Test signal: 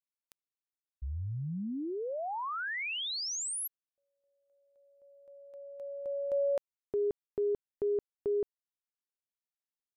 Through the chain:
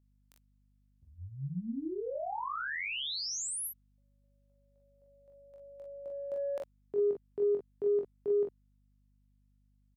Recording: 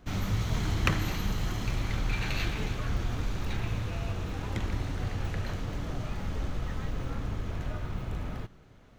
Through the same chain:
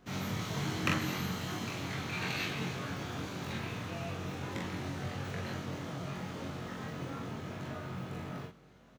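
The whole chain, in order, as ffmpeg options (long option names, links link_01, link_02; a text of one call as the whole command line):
ffmpeg -i in.wav -filter_complex "[0:a]highpass=frequency=120:width=0.5412,highpass=frequency=120:width=1.3066,asplit=2[link_01][link_02];[link_02]asoftclip=type=tanh:threshold=-20dB,volume=-7dB[link_03];[link_01][link_03]amix=inputs=2:normalize=0,aecho=1:1:22|44|57:0.631|0.668|0.398,aeval=exprs='val(0)+0.000891*(sin(2*PI*50*n/s)+sin(2*PI*2*50*n/s)/2+sin(2*PI*3*50*n/s)/3+sin(2*PI*4*50*n/s)/4+sin(2*PI*5*50*n/s)/5)':channel_layout=same,volume=-7dB" out.wav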